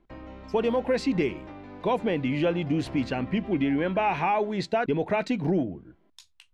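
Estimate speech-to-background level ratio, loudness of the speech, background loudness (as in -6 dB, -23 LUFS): 16.5 dB, -27.0 LUFS, -43.5 LUFS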